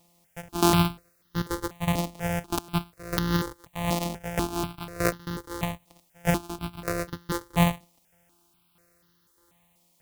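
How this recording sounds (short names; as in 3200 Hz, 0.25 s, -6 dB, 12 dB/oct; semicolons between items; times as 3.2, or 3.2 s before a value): a buzz of ramps at a fixed pitch in blocks of 256 samples; tremolo saw down 1.6 Hz, depth 80%; a quantiser's noise floor 12-bit, dither triangular; notches that jump at a steady rate 4.1 Hz 410–2400 Hz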